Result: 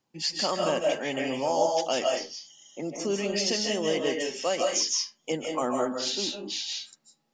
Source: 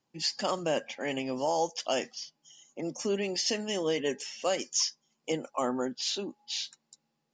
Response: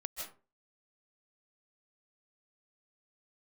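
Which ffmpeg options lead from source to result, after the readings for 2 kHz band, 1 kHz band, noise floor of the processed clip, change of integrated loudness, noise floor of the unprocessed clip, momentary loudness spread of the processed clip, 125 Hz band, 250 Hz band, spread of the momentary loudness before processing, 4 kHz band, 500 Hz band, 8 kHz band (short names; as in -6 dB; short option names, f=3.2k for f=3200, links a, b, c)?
+4.0 dB, +4.0 dB, -73 dBFS, +4.0 dB, -80 dBFS, 9 LU, +2.5 dB, +3.0 dB, 10 LU, +4.0 dB, +4.5 dB, +3.5 dB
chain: -filter_complex "[1:a]atrim=start_sample=2205,afade=t=out:st=0.36:d=0.01,atrim=end_sample=16317[a];[0:a][a]afir=irnorm=-1:irlink=0,volume=4.5dB"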